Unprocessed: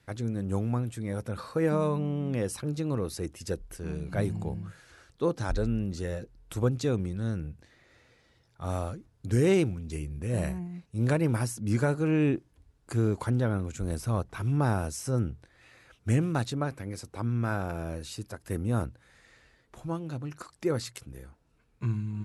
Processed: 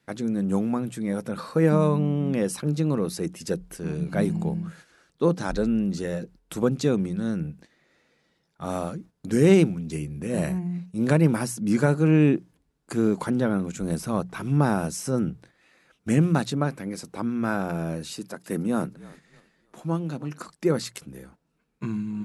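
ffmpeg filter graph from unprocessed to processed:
-filter_complex "[0:a]asettb=1/sr,asplit=3[s0][s1][s2];[s0]atrim=end=18.134[s3];[s1]atrim=start=18.13:end=20.5,asetpts=PTS-STARTPTS,afade=t=in:d=0.004:c=qsin,afade=t=out:st=2.366:d=0.004:c=qsin,highpass=140,asplit=5[s4][s5][s6][s7][s8];[s5]adelay=309,afreqshift=-49,volume=0.0944[s9];[s6]adelay=618,afreqshift=-98,volume=0.0473[s10];[s7]adelay=927,afreqshift=-147,volume=0.0237[s11];[s8]adelay=1236,afreqshift=-196,volume=0.0117[s12];[s4][s9][s10][s11][s12]amix=inputs=5:normalize=0,atrim=end_sample=104517[s13];[s2]atrim=start=20.496[s14];[s3][s13]acrossfade=d=0.004:c1=hsin:c2=qsin[s15];[s15][s14]acrossfade=d=0.004:c1=qsin:c2=hsin,bandreject=f=60:t=h:w=6,bandreject=f=120:t=h:w=6,bandreject=f=180:t=h:w=6,agate=range=0.398:threshold=0.00251:ratio=16:detection=peak,lowshelf=f=130:t=q:w=3:g=-8,volume=1.68"

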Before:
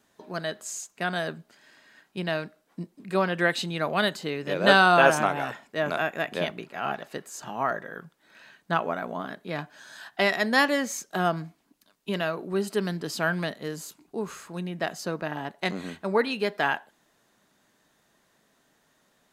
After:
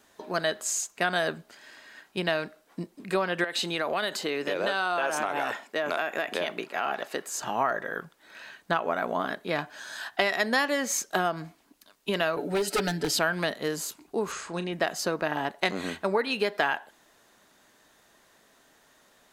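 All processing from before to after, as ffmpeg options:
-filter_complex "[0:a]asettb=1/sr,asplit=3[s0][s1][s2];[s0]atrim=end=3.444[s3];[s1]atrim=start=3.44:end=7.28,asetpts=PTS-STARTPTS,afade=t=in:d=0.004:c=qsin,afade=t=out:st=3.836:d=0.004:c=qsin,highpass=210,acompressor=threshold=0.0355:ratio=6:attack=3.2:release=140:knee=1:detection=peak[s4];[s2]atrim=start=7.276[s5];[s3][s4]acrossfade=d=0.004:c1=hsin:c2=qsin[s6];[s6][s5]acrossfade=d=0.004:c1=qsin:c2=hsin,asettb=1/sr,asplit=3[s7][s8][s9];[s7]atrim=end=12.364[s10];[s8]atrim=start=12.36:end=13.19,asetpts=PTS-STARTPTS,afade=t=in:d=0.004:c=qsin,afade=t=out:st=0.826:d=0.004:c=qsin,aecho=1:1:6.9:0.88,atrim=end_sample=36603,aeval=exprs='0.0841*(abs(mod(val(0)/0.0841+3,4)-2)-1)':c=same,asuperstop=centerf=1100:order=4:qfactor=3.9[s11];[s9]atrim=start=13.186[s12];[s10][s11]acrossfade=d=0.004:c1=hsin:c2=qsin[s13];[s13][s12]acrossfade=d=0.004:c1=qsin:c2=hsin,asettb=1/sr,asplit=3[s14][s15][s16];[s14]atrim=end=14.324[s17];[s15]atrim=start=14.32:end=14.73,asetpts=PTS-STARTPTS,afade=t=in:d=0.004:c=qsin,afade=t=out:st=0.406:d=0.004:c=qsin,lowpass=f=8600:w=0.5412,lowpass=f=8600:w=1.3066,asplit=2[s18][s19];[s19]adelay=36,volume=0.251[s20];[s18][s20]amix=inputs=2:normalize=0,atrim=end_sample=18081[s21];[s16]atrim=start=14.726[s22];[s17][s21]acrossfade=d=0.004:c1=hsin:c2=qsin[s23];[s23][s22]acrossfade=d=0.004:c1=qsin:c2=hsin,acompressor=threshold=0.0447:ratio=10,equalizer=f=160:w=1:g=-7.5,volume=2.11"

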